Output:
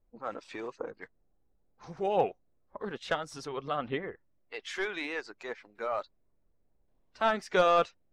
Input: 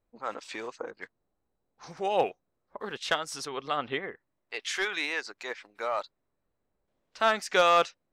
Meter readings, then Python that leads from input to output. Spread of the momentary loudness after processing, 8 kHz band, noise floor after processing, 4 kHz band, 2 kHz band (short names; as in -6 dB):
17 LU, -10.0 dB, -71 dBFS, -7.5 dB, -5.0 dB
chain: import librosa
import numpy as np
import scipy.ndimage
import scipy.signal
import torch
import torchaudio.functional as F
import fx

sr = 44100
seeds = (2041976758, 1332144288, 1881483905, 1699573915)

y = fx.spec_quant(x, sr, step_db=15)
y = fx.tilt_eq(y, sr, slope=-2.5)
y = y * 10.0 ** (-2.5 / 20.0)